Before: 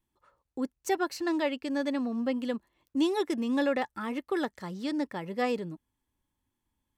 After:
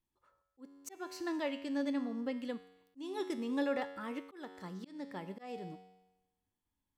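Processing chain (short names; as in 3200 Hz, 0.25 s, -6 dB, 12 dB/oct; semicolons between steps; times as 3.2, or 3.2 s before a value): resonator 93 Hz, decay 1 s, harmonics all, mix 70%; auto swell 0.305 s; gain +1.5 dB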